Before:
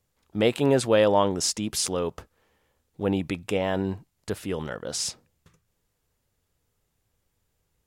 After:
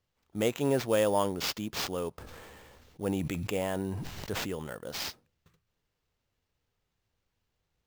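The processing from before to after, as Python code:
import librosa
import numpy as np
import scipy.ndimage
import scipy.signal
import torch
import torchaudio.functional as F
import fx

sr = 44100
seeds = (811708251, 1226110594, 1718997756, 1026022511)

y = fx.sample_hold(x, sr, seeds[0], rate_hz=10000.0, jitter_pct=0)
y = fx.sustainer(y, sr, db_per_s=21.0, at=(2.12, 4.49))
y = F.gain(torch.from_numpy(y), -6.5).numpy()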